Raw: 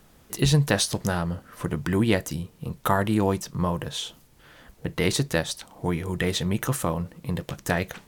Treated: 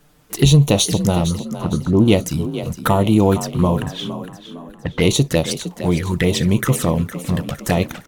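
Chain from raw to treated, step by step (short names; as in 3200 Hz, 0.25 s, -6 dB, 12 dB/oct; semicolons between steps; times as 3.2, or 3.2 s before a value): 1.26–2.08 Chebyshev low-pass 1300 Hz, order 6; 3.82–5.28 low-pass opened by the level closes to 840 Hz, open at -21 dBFS; sample leveller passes 1; envelope flanger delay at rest 7 ms, full sweep at -17.5 dBFS; frequency-shifting echo 0.46 s, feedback 41%, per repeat +37 Hz, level -12 dB; gain +6 dB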